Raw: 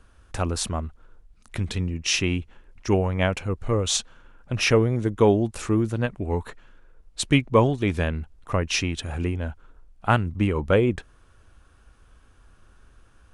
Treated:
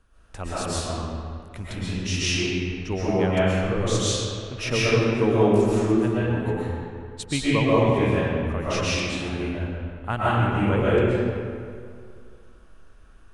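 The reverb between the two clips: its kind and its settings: digital reverb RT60 2.2 s, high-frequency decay 0.65×, pre-delay 90 ms, DRR -9.5 dB; gain -8.5 dB

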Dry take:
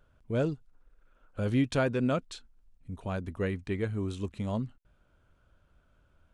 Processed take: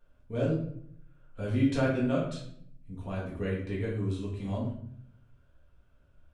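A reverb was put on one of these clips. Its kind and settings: shoebox room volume 110 m³, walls mixed, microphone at 1.7 m; gain -8.5 dB

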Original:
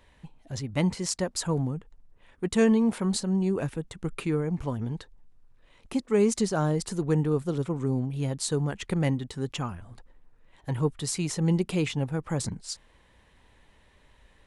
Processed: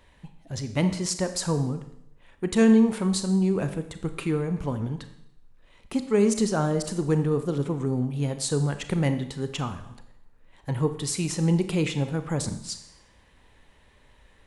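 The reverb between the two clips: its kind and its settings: Schroeder reverb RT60 0.78 s, combs from 28 ms, DRR 9 dB; gain +1.5 dB

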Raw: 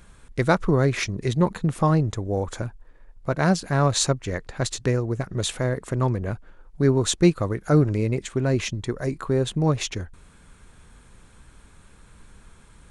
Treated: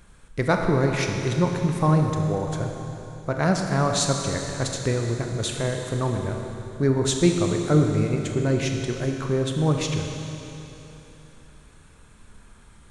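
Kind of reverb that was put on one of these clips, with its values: Schroeder reverb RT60 3.2 s, combs from 26 ms, DRR 2.5 dB; gain -2 dB

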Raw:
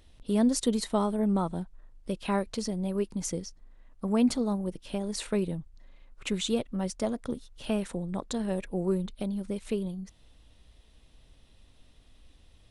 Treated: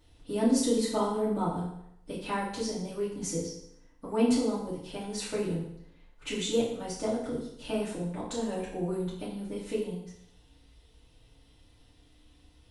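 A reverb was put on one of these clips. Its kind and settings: FDN reverb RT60 0.75 s, low-frequency decay 0.95×, high-frequency decay 0.9×, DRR -9 dB; gain -9 dB

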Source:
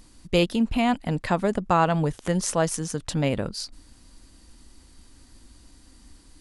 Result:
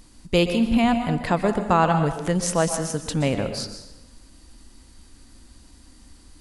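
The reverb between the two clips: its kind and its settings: plate-style reverb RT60 0.91 s, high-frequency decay 0.75×, pre-delay 0.11 s, DRR 7 dB; gain +1.5 dB

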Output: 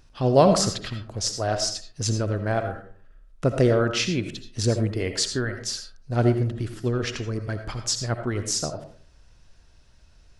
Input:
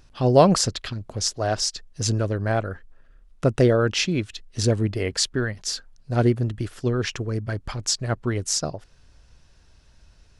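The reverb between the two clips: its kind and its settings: digital reverb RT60 0.46 s, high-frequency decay 0.45×, pre-delay 40 ms, DRR 7 dB; gain -2 dB

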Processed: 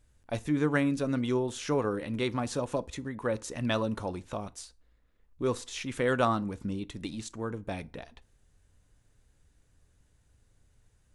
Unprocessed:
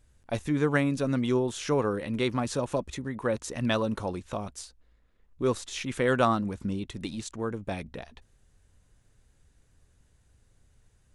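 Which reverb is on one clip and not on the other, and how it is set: FDN reverb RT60 0.38 s, low-frequency decay 0.95×, high-frequency decay 0.7×, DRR 15.5 dB; gain -2.5 dB

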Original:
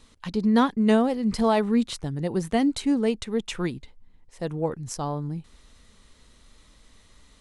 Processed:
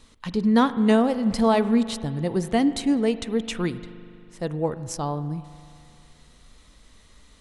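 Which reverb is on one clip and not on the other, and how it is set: spring tank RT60 2.5 s, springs 40 ms, chirp 75 ms, DRR 13 dB; gain +1.5 dB

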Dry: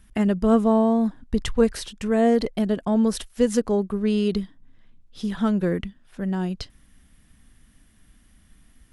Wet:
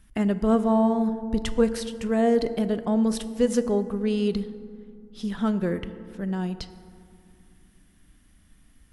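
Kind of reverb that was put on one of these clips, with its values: FDN reverb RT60 2.4 s, low-frequency decay 1.45×, high-frequency decay 0.4×, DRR 11.5 dB; gain -2.5 dB

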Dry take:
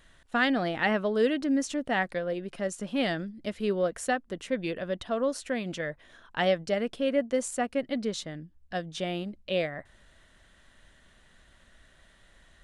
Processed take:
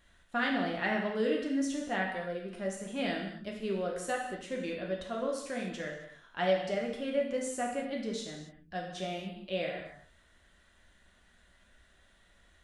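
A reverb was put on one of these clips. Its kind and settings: non-linear reverb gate 0.31 s falling, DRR -1.5 dB; gain -8 dB

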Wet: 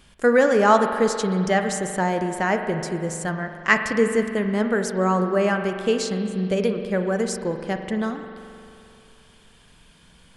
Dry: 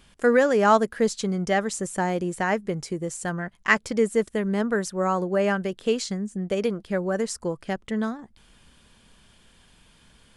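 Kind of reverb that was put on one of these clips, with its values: spring tank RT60 2.6 s, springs 43 ms, chirp 20 ms, DRR 6 dB; gain +2 dB

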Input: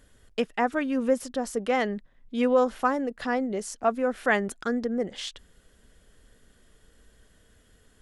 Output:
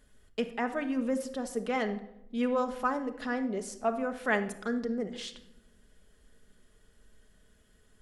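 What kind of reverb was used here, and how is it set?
shoebox room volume 2700 m³, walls furnished, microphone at 1.4 m; gain -6 dB

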